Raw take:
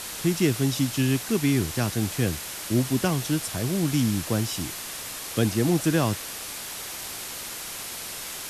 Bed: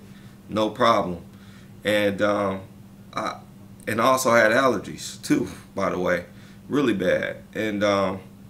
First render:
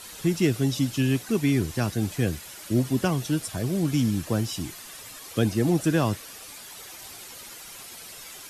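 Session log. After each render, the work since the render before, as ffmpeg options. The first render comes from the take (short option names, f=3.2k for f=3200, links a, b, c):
-af "afftdn=nr=10:nf=-36"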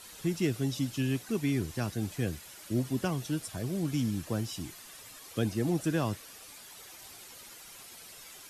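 -af "volume=-7dB"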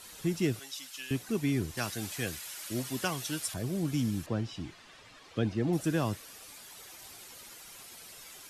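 -filter_complex "[0:a]asettb=1/sr,asplit=3[a][b][c];[a]atrim=end=0.594[d];[b]atrim=start=0.59:end=1.11,asetpts=PTS-STARTPTS,afade=t=in:d=0.004:c=qsin,afade=t=out:st=0.516:d=0.004:c=qsin,highpass=1.2k[e];[c]atrim=start=1.106[f];[d][e]acrossfade=d=0.004:c1=hsin:c2=qsin[g];[g][f]acrossfade=d=0.004:c1=qsin:c2=hsin,asettb=1/sr,asplit=3[h][i][j];[h]atrim=end=1.774[k];[i]atrim=start=1.77:end=3.54,asetpts=PTS-STARTPTS,afade=t=in:d=0.004:c=qsin,afade=t=out:st=1.766:d=0.004:c=qsin,tiltshelf=f=640:g=-7[l];[j]atrim=start=3.536[m];[k][l]acrossfade=d=0.004:c1=hsin:c2=qsin[n];[n][m]acrossfade=d=0.004:c1=qsin:c2=hsin,asettb=1/sr,asplit=3[o][p][q];[o]atrim=end=4.264[r];[p]atrim=start=4.26:end=5.73,asetpts=PTS-STARTPTS,afade=t=in:d=0.004:c=qsin,afade=t=out:st=1.466:d=0.004:c=qsin,lowpass=3.8k[s];[q]atrim=start=5.726[t];[r][s]acrossfade=d=0.004:c1=hsin:c2=qsin[u];[u][t]acrossfade=d=0.004:c1=qsin:c2=hsin"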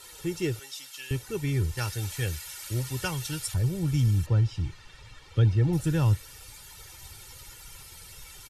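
-af "aecho=1:1:2.2:0.68,asubboost=boost=7.5:cutoff=140"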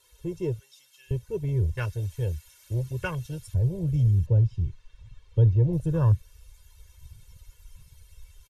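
-af "afwtdn=0.0158,aecho=1:1:1.9:0.64"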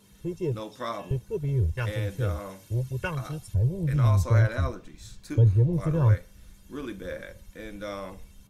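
-filter_complex "[1:a]volume=-15dB[a];[0:a][a]amix=inputs=2:normalize=0"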